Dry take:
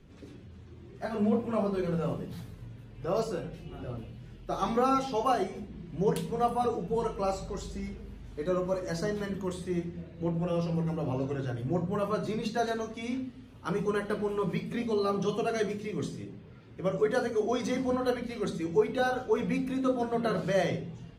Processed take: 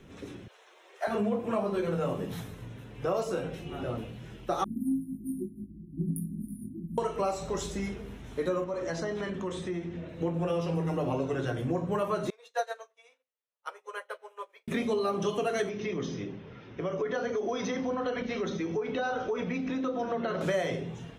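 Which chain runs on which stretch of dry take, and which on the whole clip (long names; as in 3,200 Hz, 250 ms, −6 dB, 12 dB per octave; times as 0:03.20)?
0:00.48–0:01.07: Butterworth high-pass 510 Hz + notch filter 1,200 Hz, Q 27
0:04.64–0:06.98: linear-phase brick-wall band-stop 360–9,300 Hz + double-tracking delay 19 ms −4.5 dB + expander for the loud parts, over −43 dBFS
0:08.64–0:10.09: low-pass filter 5,700 Hz + downward compressor 3 to 1, threshold −37 dBFS
0:12.30–0:14.68: Chebyshev high-pass filter 500 Hz, order 4 + expander for the loud parts 2.5 to 1, over −57 dBFS
0:15.69–0:20.41: Butterworth low-pass 6,300 Hz 96 dB per octave + downward compressor 4 to 1, threshold −34 dBFS + notch filter 4,000 Hz, Q 23
whole clip: low-shelf EQ 180 Hz −10.5 dB; notch filter 4,600 Hz, Q 5.2; downward compressor 5 to 1, threshold −35 dBFS; level +8.5 dB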